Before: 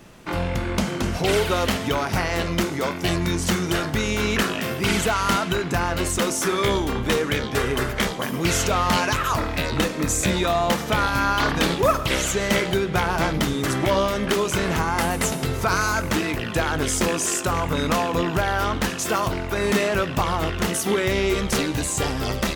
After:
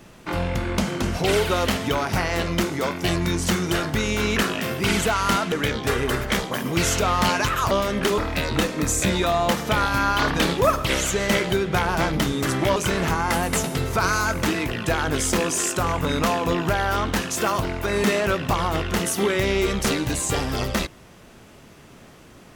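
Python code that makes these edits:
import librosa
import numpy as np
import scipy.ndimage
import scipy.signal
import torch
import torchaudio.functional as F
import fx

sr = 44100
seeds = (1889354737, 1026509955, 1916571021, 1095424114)

y = fx.edit(x, sr, fx.cut(start_s=5.52, length_s=1.68),
    fx.move(start_s=13.97, length_s=0.47, to_s=9.39), tone=tone)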